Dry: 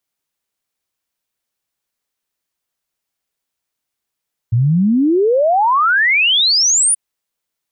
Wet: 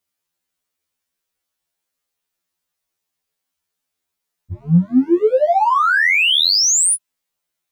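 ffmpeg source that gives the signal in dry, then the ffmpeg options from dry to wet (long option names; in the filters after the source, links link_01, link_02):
-f lavfi -i "aevalsrc='0.316*clip(min(t,2.43-t)/0.01,0,1)*sin(2*PI*110*2.43/log(10000/110)*(exp(log(10000/110)*t/2.43)-1))':duration=2.43:sample_rate=44100"
-filter_complex "[0:a]asplit=2[link_01][link_02];[link_02]asoftclip=type=hard:threshold=-22dB,volume=-11dB[link_03];[link_01][link_03]amix=inputs=2:normalize=0,afftfilt=real='re*2*eq(mod(b,4),0)':imag='im*2*eq(mod(b,4),0)':win_size=2048:overlap=0.75"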